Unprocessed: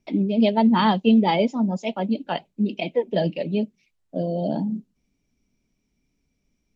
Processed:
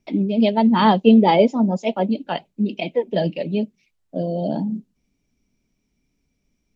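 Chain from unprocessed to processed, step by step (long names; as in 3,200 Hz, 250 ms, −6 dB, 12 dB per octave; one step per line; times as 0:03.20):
0:00.80–0:02.11: dynamic equaliser 490 Hz, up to +6 dB, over −31 dBFS, Q 0.7
level +1.5 dB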